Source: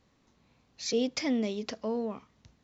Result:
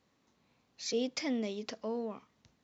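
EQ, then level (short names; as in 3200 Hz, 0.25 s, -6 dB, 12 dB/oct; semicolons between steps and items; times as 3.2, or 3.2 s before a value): HPF 170 Hz 6 dB/oct; -3.5 dB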